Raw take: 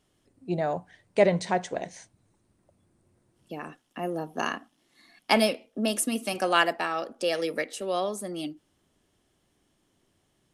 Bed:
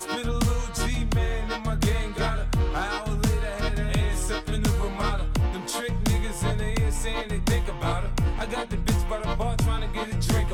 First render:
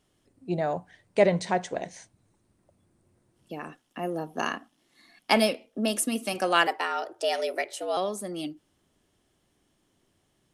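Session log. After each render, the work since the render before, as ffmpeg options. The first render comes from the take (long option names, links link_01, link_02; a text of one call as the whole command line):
ffmpeg -i in.wav -filter_complex "[0:a]asettb=1/sr,asplit=3[link_01][link_02][link_03];[link_01]atrim=end=6.674[link_04];[link_02]atrim=start=6.67:end=7.97,asetpts=PTS-STARTPTS,afade=type=in:duration=0.004:curve=qsin,afade=type=out:start_time=1.296:duration=0.004:curve=qsin,afreqshift=100[link_05];[link_03]atrim=start=7.966[link_06];[link_04][link_05]acrossfade=duration=0.004:curve1=hsin:curve2=qsin[link_07];[link_07][link_06]acrossfade=duration=0.004:curve1=qsin:curve2=hsin" out.wav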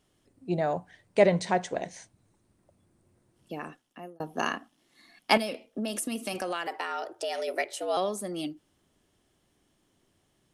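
ffmpeg -i in.wav -filter_complex "[0:a]asettb=1/sr,asplit=3[link_01][link_02][link_03];[link_01]atrim=end=5.374[link_04];[link_02]atrim=start=5.37:end=7.48,asetpts=PTS-STARTPTS,afade=type=in:duration=0.004:curve=qsin,afade=type=out:start_time=2.106:duration=0.004:curve=qsin,acompressor=threshold=-28dB:ratio=6:attack=3.2:release=140:knee=1:detection=peak[link_05];[link_03]atrim=start=7.476[link_06];[link_04][link_05]acrossfade=duration=0.004:curve1=hsin:curve2=qsin[link_07];[link_07][link_06]acrossfade=duration=0.004:curve1=qsin:curve2=hsin,asplit=2[link_08][link_09];[link_08]atrim=end=4.2,asetpts=PTS-STARTPTS,afade=type=out:start_time=3.62:duration=0.58[link_10];[link_09]atrim=start=4.2,asetpts=PTS-STARTPTS,afade=type=in:duration=0.004:curve=hsin[link_11];[link_10][link_11]concat=n=2:v=0:a=1" out.wav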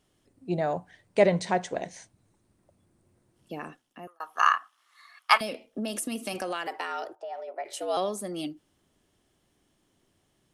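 ffmpeg -i in.wav -filter_complex "[0:a]asettb=1/sr,asplit=3[link_01][link_02][link_03];[link_01]atrim=end=4.074[link_04];[link_02]atrim=start=4.07:end=5.41,asetpts=PTS-STARTPTS,afade=type=in:duration=0.004:curve=qsin,afade=type=out:start_time=1.336:duration=0.004:curve=qsin,highpass=frequency=1200:width_type=q:width=6.5[link_05];[link_03]atrim=start=5.406[link_06];[link_04][link_05]acrossfade=duration=0.004:curve1=hsin:curve2=qsin[link_07];[link_07][link_06]acrossfade=duration=0.004:curve1=qsin:curve2=hsin,asplit=3[link_08][link_09][link_10];[link_08]afade=type=out:start_time=7.14:duration=0.02[link_11];[link_09]bandpass=frequency=820:width_type=q:width=2.5,afade=type=in:start_time=7.14:duration=0.02,afade=type=out:start_time=7.64:duration=0.02[link_12];[link_10]afade=type=in:start_time=7.64:duration=0.02[link_13];[link_11][link_12][link_13]amix=inputs=3:normalize=0" out.wav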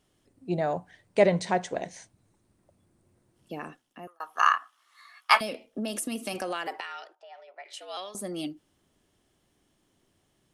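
ffmpeg -i in.wav -filter_complex "[0:a]asettb=1/sr,asplit=3[link_01][link_02][link_03];[link_01]atrim=end=4.584[link_04];[link_02]atrim=start=4.58:end=5.4,asetpts=PTS-STARTPTS,afade=type=in:duration=0.004:curve=qsin,afade=type=out:start_time=0.816:duration=0.004:curve=qsin,asplit=2[link_05][link_06];[link_06]adelay=15,volume=-6dB[link_07];[link_05][link_07]amix=inputs=2:normalize=0,atrim=end_sample=36162[link_08];[link_03]atrim=start=5.396[link_09];[link_04][link_08]acrossfade=duration=0.004:curve1=hsin:curve2=qsin[link_10];[link_10][link_09]acrossfade=duration=0.004:curve1=qsin:curve2=hsin,asettb=1/sr,asplit=3[link_11][link_12][link_13];[link_11]atrim=end=6.804[link_14];[link_12]atrim=start=6.8:end=8.15,asetpts=PTS-STARTPTS,afade=type=in:duration=0.004:curve=qsin,afade=type=out:start_time=1.346:duration=0.004:curve=qsin,bandpass=frequency=2900:width_type=q:width=0.86[link_15];[link_13]atrim=start=8.146[link_16];[link_14][link_15]acrossfade=duration=0.004:curve1=hsin:curve2=qsin[link_17];[link_17][link_16]acrossfade=duration=0.004:curve1=qsin:curve2=hsin" out.wav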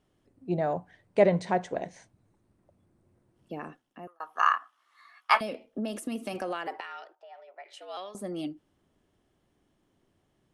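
ffmpeg -i in.wav -af "highshelf=frequency=2900:gain=-11" out.wav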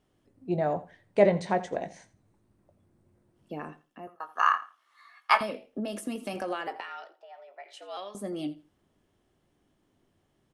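ffmpeg -i in.wav -filter_complex "[0:a]asplit=2[link_01][link_02];[link_02]adelay=20,volume=-11dB[link_03];[link_01][link_03]amix=inputs=2:normalize=0,aecho=1:1:84|168:0.133|0.0267" out.wav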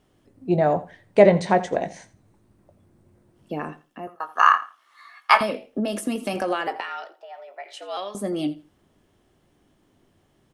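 ffmpeg -i in.wav -af "volume=8dB,alimiter=limit=-2dB:level=0:latency=1" out.wav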